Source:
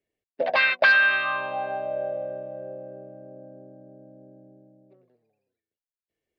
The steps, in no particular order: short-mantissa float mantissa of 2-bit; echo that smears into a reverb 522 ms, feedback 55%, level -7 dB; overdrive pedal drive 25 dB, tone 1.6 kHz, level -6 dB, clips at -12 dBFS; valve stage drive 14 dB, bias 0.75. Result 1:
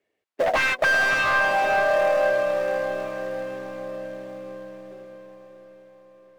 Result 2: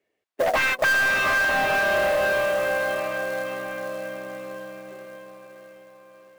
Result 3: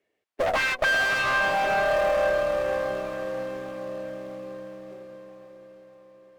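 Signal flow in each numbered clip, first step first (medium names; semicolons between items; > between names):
valve stage > short-mantissa float > overdrive pedal > echo that smears into a reverb; valve stage > echo that smears into a reverb > overdrive pedal > short-mantissa float; short-mantissa float > overdrive pedal > valve stage > echo that smears into a reverb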